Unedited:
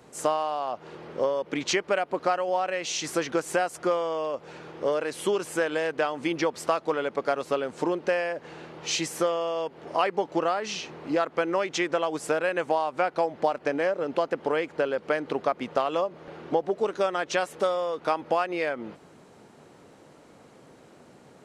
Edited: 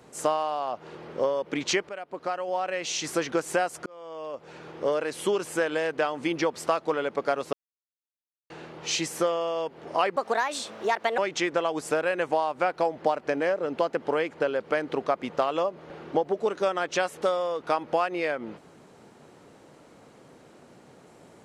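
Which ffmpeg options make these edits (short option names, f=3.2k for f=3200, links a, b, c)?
-filter_complex "[0:a]asplit=7[a][b][c][d][e][f][g];[a]atrim=end=1.89,asetpts=PTS-STARTPTS,afade=t=out:st=1.886:d=0.004:c=hsin:silence=0.188365[h];[b]atrim=start=1.89:end=3.86,asetpts=PTS-STARTPTS,afade=t=in:d=0.97:silence=0.188365,afade=t=out:st=1.966:d=0.004:c=hsin[i];[c]atrim=start=3.86:end=7.53,asetpts=PTS-STARTPTS,afade=t=in:d=0.85,afade=t=out:st=3.666:d=0.004:c=hsin[j];[d]atrim=start=7.53:end=8.5,asetpts=PTS-STARTPTS,volume=0[k];[e]atrim=start=8.5:end=10.164,asetpts=PTS-STARTPTS,afade=t=in:d=0.004:c=hsin[l];[f]atrim=start=10.16:end=11.56,asetpts=PTS-STARTPTS,asetrate=60417,aresample=44100[m];[g]atrim=start=11.556[n];[h][i][j][k][l]concat=n=5:v=0:a=1[o];[o][m]acrossfade=d=0.004:c1=hsin:c2=hsin[p];[p][n]acrossfade=d=0.004:c1=hsin:c2=hsin"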